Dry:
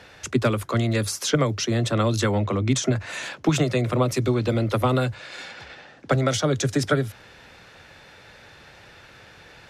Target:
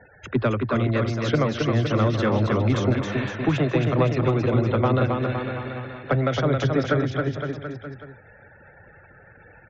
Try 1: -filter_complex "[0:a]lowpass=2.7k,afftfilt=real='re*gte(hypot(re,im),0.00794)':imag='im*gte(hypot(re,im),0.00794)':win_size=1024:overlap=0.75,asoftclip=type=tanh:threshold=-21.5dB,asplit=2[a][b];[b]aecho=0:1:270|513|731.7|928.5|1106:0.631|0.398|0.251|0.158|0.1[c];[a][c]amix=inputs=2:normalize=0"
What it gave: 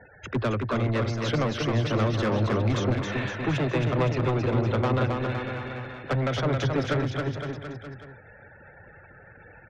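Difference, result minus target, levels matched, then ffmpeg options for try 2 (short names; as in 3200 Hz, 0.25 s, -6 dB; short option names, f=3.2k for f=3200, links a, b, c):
soft clip: distortion +13 dB
-filter_complex "[0:a]lowpass=2.7k,afftfilt=real='re*gte(hypot(re,im),0.00794)':imag='im*gte(hypot(re,im),0.00794)':win_size=1024:overlap=0.75,asoftclip=type=tanh:threshold=-10.5dB,asplit=2[a][b];[b]aecho=0:1:270|513|731.7|928.5|1106:0.631|0.398|0.251|0.158|0.1[c];[a][c]amix=inputs=2:normalize=0"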